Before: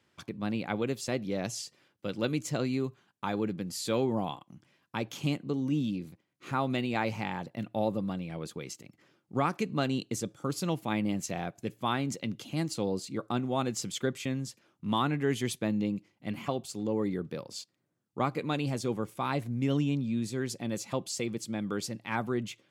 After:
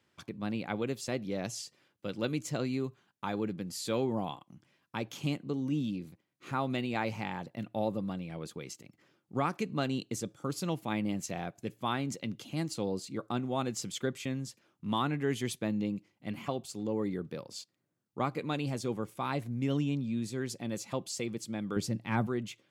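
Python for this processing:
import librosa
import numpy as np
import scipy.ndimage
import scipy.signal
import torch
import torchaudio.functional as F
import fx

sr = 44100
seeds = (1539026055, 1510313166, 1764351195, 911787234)

y = fx.low_shelf(x, sr, hz=300.0, db=11.5, at=(21.76, 22.27))
y = y * librosa.db_to_amplitude(-2.5)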